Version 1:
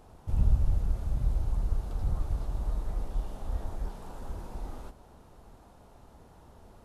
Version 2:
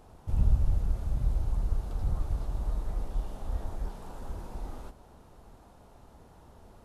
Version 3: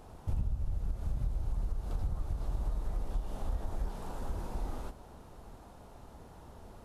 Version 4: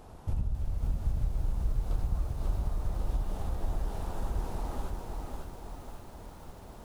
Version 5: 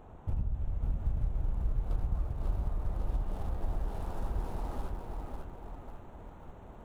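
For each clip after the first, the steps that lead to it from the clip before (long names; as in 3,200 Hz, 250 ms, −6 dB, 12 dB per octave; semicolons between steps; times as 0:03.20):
no processing that can be heard
downward compressor 10 to 1, threshold −31 dBFS, peak gain reduction 14 dB; level +2.5 dB
feedback echo at a low word length 546 ms, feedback 55%, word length 10 bits, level −3 dB; level +1.5 dB
adaptive Wiener filter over 9 samples; level −1.5 dB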